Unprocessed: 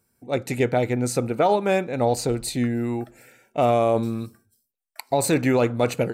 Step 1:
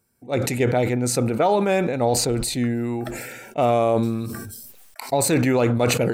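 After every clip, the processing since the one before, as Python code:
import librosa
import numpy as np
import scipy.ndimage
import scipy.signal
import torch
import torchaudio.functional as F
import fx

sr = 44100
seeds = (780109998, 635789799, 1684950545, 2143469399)

y = fx.sustainer(x, sr, db_per_s=33.0)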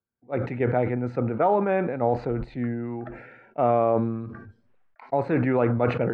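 y = fx.ladder_lowpass(x, sr, hz=2100.0, resonance_pct=25)
y = fx.band_widen(y, sr, depth_pct=40)
y = F.gain(torch.from_numpy(y), 2.5).numpy()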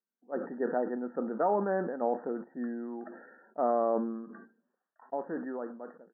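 y = fx.fade_out_tail(x, sr, length_s=1.51)
y = fx.brickwall_bandpass(y, sr, low_hz=170.0, high_hz=1900.0)
y = F.gain(torch.from_numpy(y), -6.5).numpy()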